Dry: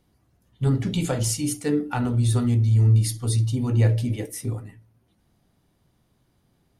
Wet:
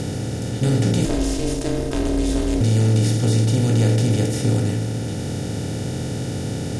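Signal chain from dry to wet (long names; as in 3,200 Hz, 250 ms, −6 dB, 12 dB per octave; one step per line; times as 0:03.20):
compressor on every frequency bin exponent 0.2
parametric band 1,100 Hz −11.5 dB 0.86 octaves
0:01.05–0:02.61: ring modulation 160 Hz
high-frequency loss of the air 56 metres
level −2 dB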